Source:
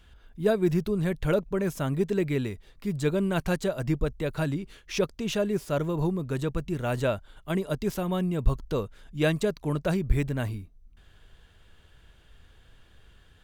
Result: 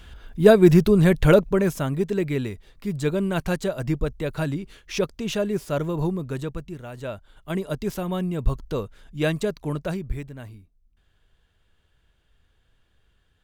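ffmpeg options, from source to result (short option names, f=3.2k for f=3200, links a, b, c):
-af "volume=22dB,afade=t=out:st=1.24:d=0.66:silence=0.375837,afade=t=out:st=6.14:d=0.78:silence=0.237137,afade=t=in:st=6.92:d=0.67:silence=0.266073,afade=t=out:st=9.66:d=0.62:silence=0.298538"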